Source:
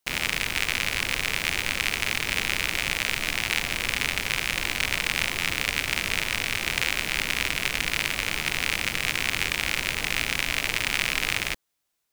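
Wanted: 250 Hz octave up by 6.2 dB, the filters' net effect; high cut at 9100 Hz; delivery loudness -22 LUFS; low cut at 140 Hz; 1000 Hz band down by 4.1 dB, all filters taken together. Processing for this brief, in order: HPF 140 Hz; LPF 9100 Hz; bell 250 Hz +9 dB; bell 1000 Hz -6 dB; gain +4 dB

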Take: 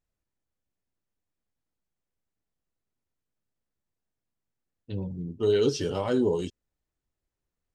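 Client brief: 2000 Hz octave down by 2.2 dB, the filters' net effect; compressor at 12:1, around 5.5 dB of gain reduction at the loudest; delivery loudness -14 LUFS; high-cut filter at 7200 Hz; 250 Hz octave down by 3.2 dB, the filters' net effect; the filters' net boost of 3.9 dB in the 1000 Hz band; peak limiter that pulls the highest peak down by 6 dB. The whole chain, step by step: LPF 7200 Hz; bell 250 Hz -4.5 dB; bell 1000 Hz +6.5 dB; bell 2000 Hz -6.5 dB; compressor 12:1, threshold -25 dBFS; gain +20.5 dB; limiter -3.5 dBFS

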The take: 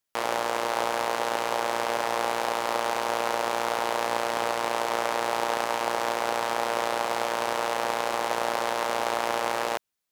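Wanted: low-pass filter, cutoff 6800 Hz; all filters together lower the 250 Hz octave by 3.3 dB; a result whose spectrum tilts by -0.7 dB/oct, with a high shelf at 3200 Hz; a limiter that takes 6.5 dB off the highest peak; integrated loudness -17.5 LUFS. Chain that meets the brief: LPF 6800 Hz; bell 250 Hz -5 dB; high shelf 3200 Hz -7.5 dB; gain +14.5 dB; limiter -4 dBFS

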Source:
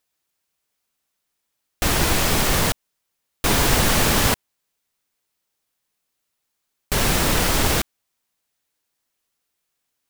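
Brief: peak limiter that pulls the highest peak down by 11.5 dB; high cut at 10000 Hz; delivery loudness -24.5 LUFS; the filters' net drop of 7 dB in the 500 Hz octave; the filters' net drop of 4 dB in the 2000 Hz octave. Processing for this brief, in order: LPF 10000 Hz; bell 500 Hz -9 dB; bell 2000 Hz -4.5 dB; gain +2.5 dB; limiter -14 dBFS

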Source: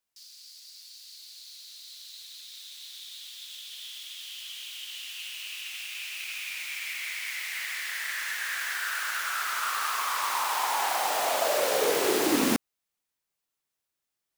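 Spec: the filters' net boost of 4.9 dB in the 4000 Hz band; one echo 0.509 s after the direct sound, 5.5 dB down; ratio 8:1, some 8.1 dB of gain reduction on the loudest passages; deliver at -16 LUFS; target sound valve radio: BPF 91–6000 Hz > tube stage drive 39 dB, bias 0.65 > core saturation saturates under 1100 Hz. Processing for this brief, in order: bell 4000 Hz +7 dB; compressor 8:1, threshold -28 dBFS; BPF 91–6000 Hz; echo 0.509 s -5.5 dB; tube stage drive 39 dB, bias 0.65; core saturation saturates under 1100 Hz; gain +27 dB

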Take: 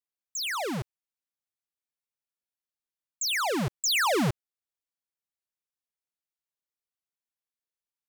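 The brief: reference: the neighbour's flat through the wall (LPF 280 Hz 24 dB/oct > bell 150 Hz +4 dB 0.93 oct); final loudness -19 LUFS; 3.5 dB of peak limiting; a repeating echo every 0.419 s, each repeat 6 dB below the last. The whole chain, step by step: limiter -27.5 dBFS; LPF 280 Hz 24 dB/oct; bell 150 Hz +4 dB 0.93 oct; feedback echo 0.419 s, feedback 50%, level -6 dB; gain +18 dB

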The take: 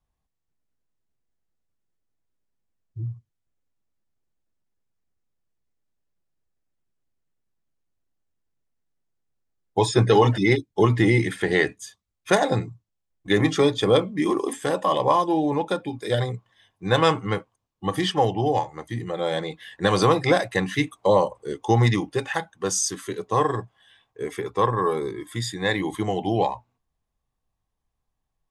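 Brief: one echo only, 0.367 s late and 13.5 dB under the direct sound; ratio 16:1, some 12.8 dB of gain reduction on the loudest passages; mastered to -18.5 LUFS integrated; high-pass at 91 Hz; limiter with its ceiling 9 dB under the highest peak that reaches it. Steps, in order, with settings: HPF 91 Hz; compressor 16:1, threshold -26 dBFS; limiter -21.5 dBFS; echo 0.367 s -13.5 dB; gain +15 dB

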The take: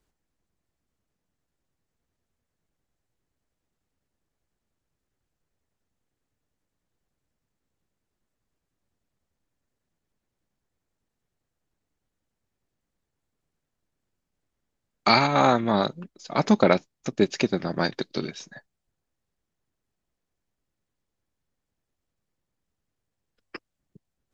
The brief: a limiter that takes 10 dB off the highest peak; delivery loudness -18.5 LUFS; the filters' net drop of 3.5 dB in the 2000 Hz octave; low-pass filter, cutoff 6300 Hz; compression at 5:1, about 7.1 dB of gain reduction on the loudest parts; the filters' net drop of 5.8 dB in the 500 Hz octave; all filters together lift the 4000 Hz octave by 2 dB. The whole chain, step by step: LPF 6300 Hz; bell 500 Hz -7.5 dB; bell 2000 Hz -5 dB; bell 4000 Hz +4 dB; compressor 5:1, threshold -23 dBFS; gain +17 dB; limiter -4 dBFS

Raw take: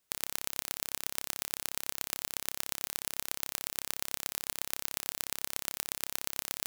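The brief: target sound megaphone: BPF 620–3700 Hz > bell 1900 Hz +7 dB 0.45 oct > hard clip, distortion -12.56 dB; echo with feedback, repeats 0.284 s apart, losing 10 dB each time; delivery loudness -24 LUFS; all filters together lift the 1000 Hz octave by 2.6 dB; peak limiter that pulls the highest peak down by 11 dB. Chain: bell 1000 Hz +3.5 dB; limiter -14 dBFS; BPF 620–3700 Hz; bell 1900 Hz +7 dB 0.45 oct; feedback echo 0.284 s, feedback 32%, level -10 dB; hard clip -33 dBFS; gain +26 dB

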